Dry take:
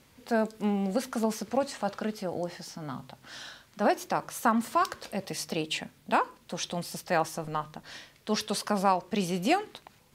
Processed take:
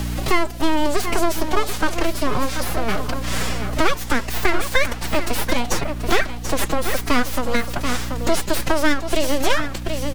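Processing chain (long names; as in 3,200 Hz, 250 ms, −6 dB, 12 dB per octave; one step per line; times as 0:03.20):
in parallel at +3 dB: downward compressor, threshold −35 dBFS, peak gain reduction 15.5 dB
on the sum: full-wave rectification
phase-vocoder pitch shift with formants kept +7.5 semitones
mains hum 60 Hz, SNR 17 dB
on a send: single-tap delay 733 ms −12 dB
on the sum: multiband upward and downward compressor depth 70%
level +9 dB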